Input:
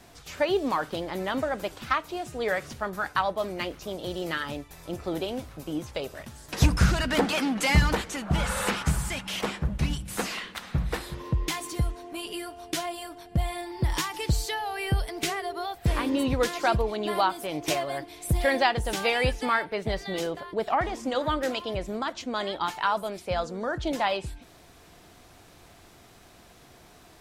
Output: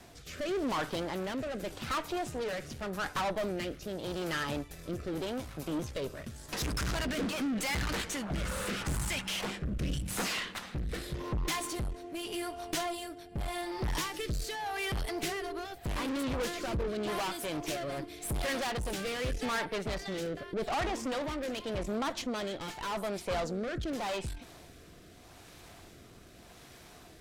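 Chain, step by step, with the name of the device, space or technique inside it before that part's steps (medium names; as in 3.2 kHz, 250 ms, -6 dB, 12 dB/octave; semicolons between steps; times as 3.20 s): overdriven rotary cabinet (valve stage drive 34 dB, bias 0.6; rotary cabinet horn 0.85 Hz); trim +5 dB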